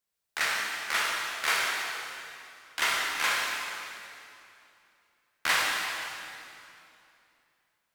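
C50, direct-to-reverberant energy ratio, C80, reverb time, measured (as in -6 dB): -1.5 dB, -4.0 dB, 0.0 dB, 2.7 s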